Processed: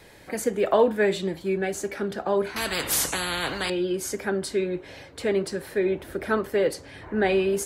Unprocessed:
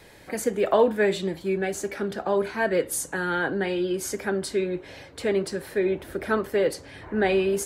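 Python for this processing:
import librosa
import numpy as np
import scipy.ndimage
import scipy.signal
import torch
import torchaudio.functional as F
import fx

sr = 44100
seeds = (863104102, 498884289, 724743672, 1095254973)

y = fx.spectral_comp(x, sr, ratio=4.0, at=(2.56, 3.7))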